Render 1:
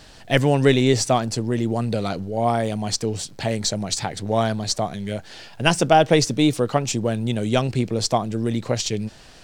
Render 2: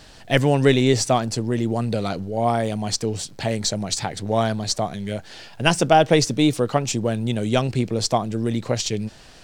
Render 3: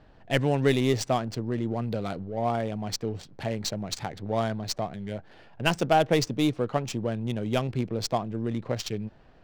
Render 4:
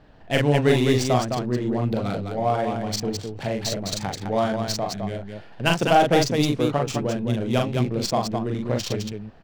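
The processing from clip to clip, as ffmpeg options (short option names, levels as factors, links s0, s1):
-af anull
-af "adynamicsmooth=sensitivity=3:basefreq=1400,volume=0.473"
-af "aecho=1:1:40.82|209.9:0.708|0.562,volume=1.33"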